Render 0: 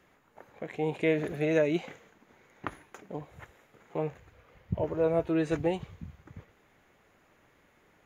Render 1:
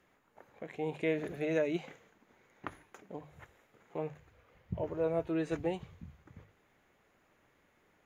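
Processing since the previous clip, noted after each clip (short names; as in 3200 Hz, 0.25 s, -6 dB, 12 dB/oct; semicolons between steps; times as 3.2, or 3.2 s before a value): notches 50/100/150 Hz; gain -5.5 dB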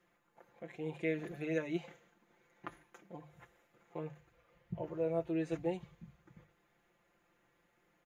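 comb 5.8 ms, depth 86%; gain -6.5 dB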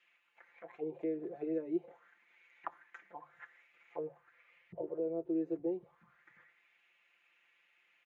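compressor 1.5:1, threshold -54 dBFS, peak gain reduction 9 dB; auto-wah 380–2800 Hz, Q 3.8, down, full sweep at -43 dBFS; gain +13.5 dB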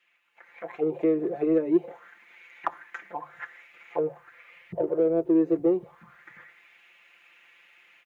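AGC gain up to 12 dB; in parallel at -10.5 dB: soft clip -25.5 dBFS, distortion -9 dB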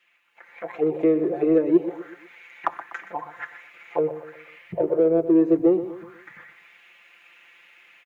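feedback echo 0.123 s, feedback 44%, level -13 dB; gain +4 dB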